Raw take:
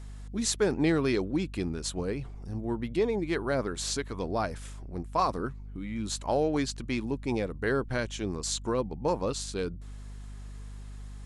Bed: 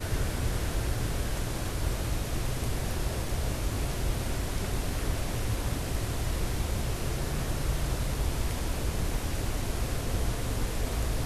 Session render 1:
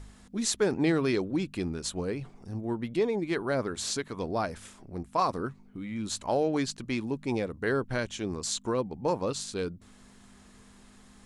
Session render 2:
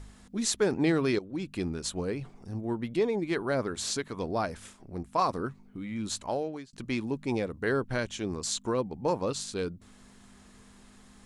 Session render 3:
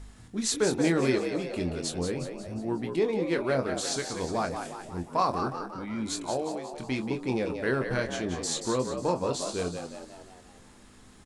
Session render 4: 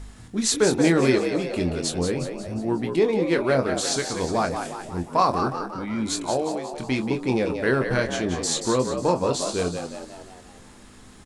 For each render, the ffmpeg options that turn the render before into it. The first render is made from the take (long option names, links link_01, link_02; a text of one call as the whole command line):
ffmpeg -i in.wav -af "bandreject=frequency=50:width_type=h:width=4,bandreject=frequency=100:width_type=h:width=4,bandreject=frequency=150:width_type=h:width=4" out.wav
ffmpeg -i in.wav -filter_complex "[0:a]asettb=1/sr,asplit=3[link_01][link_02][link_03];[link_01]atrim=end=4.574[link_04];[link_02]atrim=start=4.57:end=4.98,asetpts=PTS-STARTPTS,afade=type=in:duration=0.004:curve=qsin,afade=type=out:start_time=0.406:duration=0.004:curve=qsin,agate=range=-33dB:threshold=-50dB:ratio=3:release=100:detection=peak[link_05];[link_03]atrim=start=4.976[link_06];[link_04][link_05]acrossfade=duration=0.004:curve1=hsin:curve2=qsin[link_07];[link_07][link_06]acrossfade=duration=0.004:curve1=qsin:curve2=hsin,asplit=3[link_08][link_09][link_10];[link_08]atrim=end=1.19,asetpts=PTS-STARTPTS,afade=type=out:start_time=1.186:duration=0.004:curve=hsin:silence=0.177828[link_11];[link_09]atrim=start=1.19:end=6.73,asetpts=PTS-STARTPTS,afade=type=in:duration=0.41:silence=0.177828,afade=type=out:start_time=4.93:duration=0.61[link_12];[link_10]atrim=start=6.73,asetpts=PTS-STARTPTS,afade=type=in:duration=0.004:curve=hsin[link_13];[link_11][link_12][link_13]concat=n=3:v=0:a=1" out.wav
ffmpeg -i in.wav -filter_complex "[0:a]asplit=2[link_01][link_02];[link_02]adelay=23,volume=-7.5dB[link_03];[link_01][link_03]amix=inputs=2:normalize=0,asplit=2[link_04][link_05];[link_05]asplit=6[link_06][link_07][link_08][link_09][link_10][link_11];[link_06]adelay=180,afreqshift=69,volume=-7.5dB[link_12];[link_07]adelay=360,afreqshift=138,volume=-13dB[link_13];[link_08]adelay=540,afreqshift=207,volume=-18.5dB[link_14];[link_09]adelay=720,afreqshift=276,volume=-24dB[link_15];[link_10]adelay=900,afreqshift=345,volume=-29.6dB[link_16];[link_11]adelay=1080,afreqshift=414,volume=-35.1dB[link_17];[link_12][link_13][link_14][link_15][link_16][link_17]amix=inputs=6:normalize=0[link_18];[link_04][link_18]amix=inputs=2:normalize=0" out.wav
ffmpeg -i in.wav -af "volume=6dB" out.wav